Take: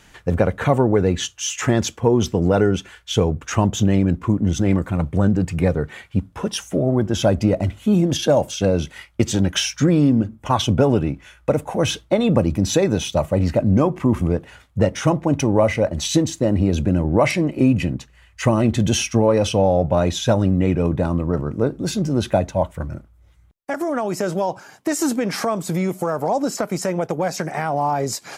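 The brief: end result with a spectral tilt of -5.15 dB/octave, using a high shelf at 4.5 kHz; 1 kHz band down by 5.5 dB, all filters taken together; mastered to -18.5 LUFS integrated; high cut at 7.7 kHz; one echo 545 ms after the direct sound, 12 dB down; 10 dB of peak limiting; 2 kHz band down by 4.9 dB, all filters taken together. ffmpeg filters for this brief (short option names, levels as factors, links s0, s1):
-af "lowpass=7700,equalizer=f=1000:t=o:g=-7,equalizer=f=2000:t=o:g=-5.5,highshelf=f=4500:g=6,alimiter=limit=0.224:level=0:latency=1,aecho=1:1:545:0.251,volume=1.78"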